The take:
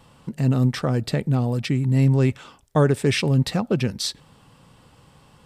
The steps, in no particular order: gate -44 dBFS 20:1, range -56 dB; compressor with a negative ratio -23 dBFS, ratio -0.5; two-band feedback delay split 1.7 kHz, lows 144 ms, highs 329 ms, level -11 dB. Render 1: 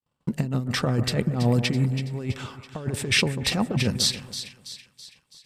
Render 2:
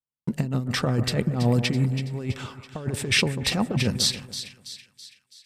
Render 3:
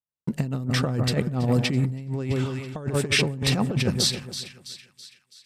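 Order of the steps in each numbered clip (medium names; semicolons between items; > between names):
compressor with a negative ratio > gate > two-band feedback delay; gate > compressor with a negative ratio > two-band feedback delay; gate > two-band feedback delay > compressor with a negative ratio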